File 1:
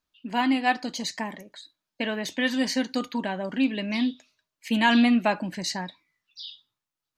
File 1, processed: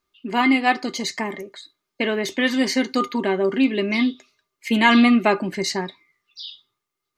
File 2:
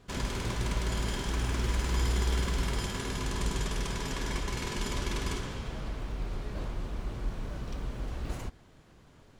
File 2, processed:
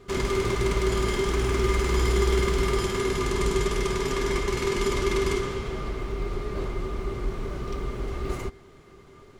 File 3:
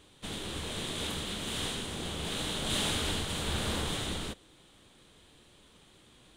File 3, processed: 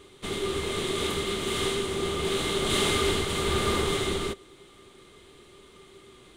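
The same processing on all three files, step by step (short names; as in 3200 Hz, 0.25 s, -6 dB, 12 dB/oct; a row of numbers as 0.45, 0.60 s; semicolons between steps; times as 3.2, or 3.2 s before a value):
small resonant body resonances 390/1200/2100 Hz, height 17 dB, ringing for 0.1 s; gain +4 dB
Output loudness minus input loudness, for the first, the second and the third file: +5.5, +7.0, +6.5 LU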